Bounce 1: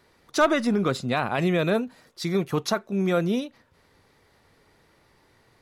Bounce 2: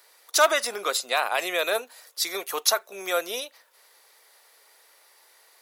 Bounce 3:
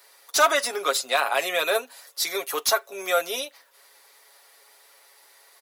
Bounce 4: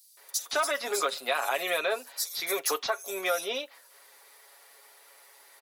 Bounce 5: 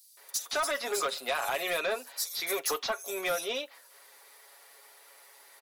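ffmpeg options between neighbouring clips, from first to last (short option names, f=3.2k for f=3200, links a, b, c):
-af "highpass=f=510:w=0.5412,highpass=f=510:w=1.3066,aemphasis=mode=production:type=75fm,volume=1.5dB"
-filter_complex "[0:a]aecho=1:1:7.2:0.65,acrossover=split=1300[a][b];[b]asoftclip=type=tanh:threshold=-17dB[c];[a][c]amix=inputs=2:normalize=0,volume=1dB"
-filter_complex "[0:a]acompressor=threshold=-24dB:ratio=6,acrossover=split=4600[a][b];[a]adelay=170[c];[c][b]amix=inputs=2:normalize=0"
-af "asoftclip=type=tanh:threshold=-23dB"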